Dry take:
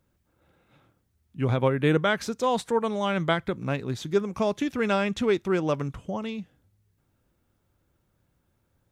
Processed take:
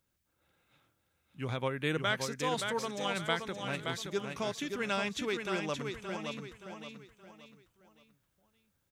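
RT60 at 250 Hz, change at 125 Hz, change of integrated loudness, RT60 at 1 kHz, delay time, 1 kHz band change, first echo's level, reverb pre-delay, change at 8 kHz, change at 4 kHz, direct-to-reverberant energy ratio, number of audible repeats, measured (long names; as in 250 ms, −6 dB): no reverb audible, −11.0 dB, −8.0 dB, no reverb audible, 573 ms, −7.5 dB, −5.5 dB, no reverb audible, +0.5 dB, −1.0 dB, no reverb audible, 4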